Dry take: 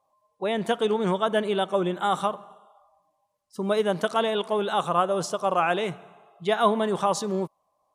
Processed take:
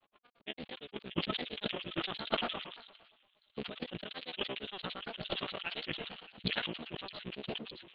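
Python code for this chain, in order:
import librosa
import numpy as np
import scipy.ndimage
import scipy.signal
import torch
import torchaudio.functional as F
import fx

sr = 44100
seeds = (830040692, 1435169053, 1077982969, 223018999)

y = fx.cycle_switch(x, sr, every=3, mode='muted')
y = fx.peak_eq(y, sr, hz=890.0, db=-7.5, octaves=1.3)
y = fx.rev_freeverb(y, sr, rt60_s=0.52, hf_ratio=0.4, predelay_ms=45, drr_db=13.5)
y = fx.over_compress(y, sr, threshold_db=-39.0, ratio=-1.0)
y = scipy.signal.sosfilt(scipy.signal.butter(16, 4000.0, 'lowpass', fs=sr, output='sos'), y)
y = fx.transient(y, sr, attack_db=7, sustain_db=1)
y = fx.granulator(y, sr, seeds[0], grain_ms=74.0, per_s=8.7, spray_ms=25.0, spread_st=3)
y = fx.peak_eq(y, sr, hz=2900.0, db=12.0, octaves=0.99)
y = fx.echo_wet_highpass(y, sr, ms=613, feedback_pct=47, hz=2900.0, wet_db=-19.5)
y = fx.sustainer(y, sr, db_per_s=54.0)
y = y * 10.0 ** (-1.5 / 20.0)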